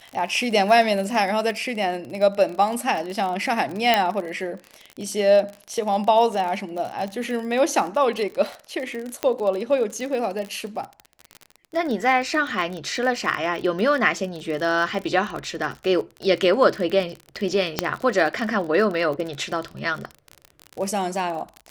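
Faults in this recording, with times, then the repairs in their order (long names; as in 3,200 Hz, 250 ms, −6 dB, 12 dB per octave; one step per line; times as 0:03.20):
surface crackle 37 per second −27 dBFS
0:03.94: click −4 dBFS
0:09.23: click −8 dBFS
0:17.79: click −4 dBFS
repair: click removal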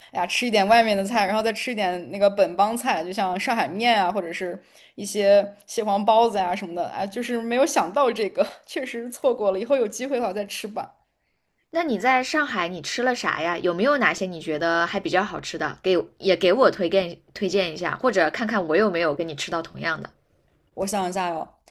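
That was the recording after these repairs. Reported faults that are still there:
0:09.23: click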